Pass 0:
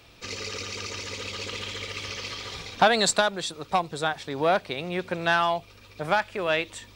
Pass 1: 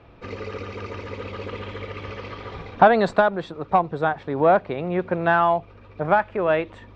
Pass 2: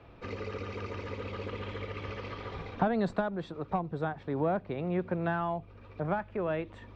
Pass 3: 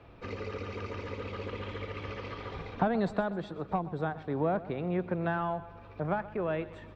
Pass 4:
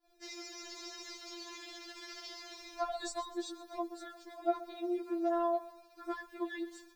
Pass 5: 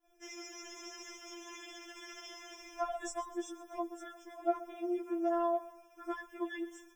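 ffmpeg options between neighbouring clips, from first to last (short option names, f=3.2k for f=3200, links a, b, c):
-af "lowpass=1.3k,volume=6.5dB"
-filter_complex "[0:a]acrossover=split=300[a][b];[b]acompressor=threshold=-35dB:ratio=2[c];[a][c]amix=inputs=2:normalize=0,volume=-4dB"
-af "aecho=1:1:127|254|381|508|635:0.141|0.0805|0.0459|0.0262|0.0149"
-af "aexciter=amount=10.2:drive=7.3:freq=4.3k,agate=range=-33dB:threshold=-44dB:ratio=3:detection=peak,afftfilt=real='re*4*eq(mod(b,16),0)':imag='im*4*eq(mod(b,16),0)':win_size=2048:overlap=0.75,volume=-3dB"
-af "asuperstop=centerf=4300:order=20:qfactor=3"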